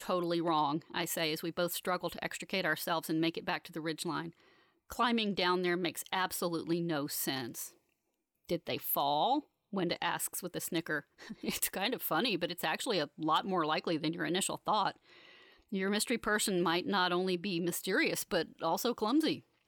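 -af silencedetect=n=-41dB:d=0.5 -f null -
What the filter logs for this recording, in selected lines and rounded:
silence_start: 4.29
silence_end: 4.90 | silence_duration: 0.61
silence_start: 7.67
silence_end: 8.49 | silence_duration: 0.82
silence_start: 14.91
silence_end: 15.72 | silence_duration: 0.81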